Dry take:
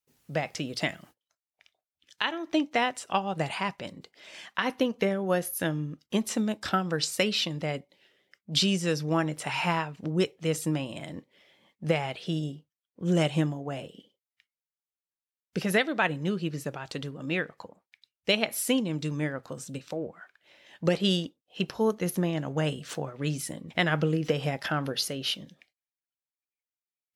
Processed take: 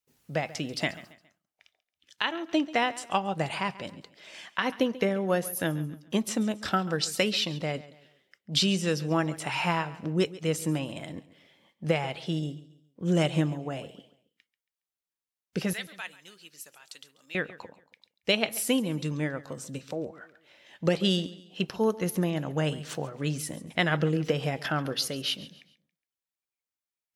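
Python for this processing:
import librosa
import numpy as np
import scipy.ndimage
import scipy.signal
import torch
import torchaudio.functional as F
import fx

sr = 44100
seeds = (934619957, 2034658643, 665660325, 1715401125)

y = fx.differentiator(x, sr, at=(15.73, 17.35))
y = fx.echo_feedback(y, sr, ms=138, feedback_pct=37, wet_db=-18)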